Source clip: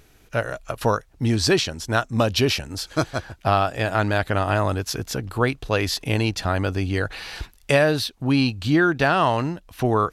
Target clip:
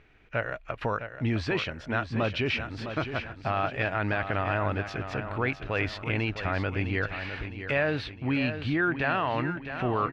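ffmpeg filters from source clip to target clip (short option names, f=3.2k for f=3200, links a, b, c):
-filter_complex "[0:a]alimiter=limit=-13.5dB:level=0:latency=1:release=24,lowpass=f=2.3k:t=q:w=2.2,asplit=2[a][b];[b]aecho=0:1:658|1316|1974|2632|3290:0.335|0.151|0.0678|0.0305|0.0137[c];[a][c]amix=inputs=2:normalize=0,volume=-6dB"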